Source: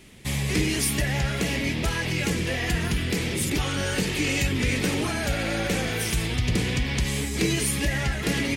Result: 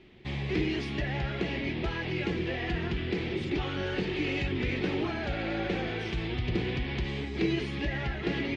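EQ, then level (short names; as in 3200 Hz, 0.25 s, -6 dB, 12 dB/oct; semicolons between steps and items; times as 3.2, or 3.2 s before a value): LPF 3900 Hz 24 dB/oct; bell 360 Hz +11.5 dB 0.25 oct; bell 760 Hz +4.5 dB 0.34 oct; -7.0 dB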